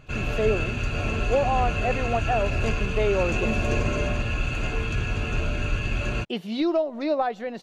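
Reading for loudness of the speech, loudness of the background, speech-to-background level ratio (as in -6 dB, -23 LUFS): -27.0 LUFS, -27.5 LUFS, 0.5 dB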